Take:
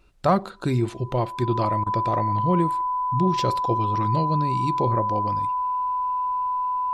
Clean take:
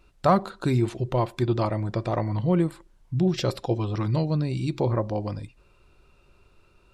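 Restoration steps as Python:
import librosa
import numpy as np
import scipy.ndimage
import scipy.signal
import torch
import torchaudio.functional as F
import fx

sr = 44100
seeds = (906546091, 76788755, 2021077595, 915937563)

y = fx.notch(x, sr, hz=1000.0, q=30.0)
y = fx.fix_interpolate(y, sr, at_s=(1.84,), length_ms=23.0)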